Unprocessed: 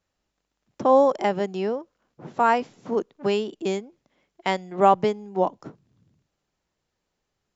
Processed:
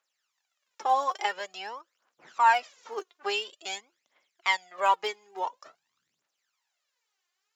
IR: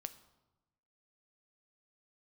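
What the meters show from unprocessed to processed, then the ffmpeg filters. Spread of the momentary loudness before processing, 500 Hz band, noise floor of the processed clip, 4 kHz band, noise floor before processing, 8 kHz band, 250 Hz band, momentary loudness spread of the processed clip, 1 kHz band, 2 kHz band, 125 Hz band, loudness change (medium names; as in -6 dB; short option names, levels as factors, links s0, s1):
11 LU, -14.0 dB, -82 dBFS, +3.0 dB, -81 dBFS, no reading, under -20 dB, 17 LU, -3.0 dB, +3.0 dB, under -30 dB, -5.5 dB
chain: -af "aphaser=in_gain=1:out_gain=1:delay=2.9:decay=0.7:speed=0.48:type=triangular,highpass=1200"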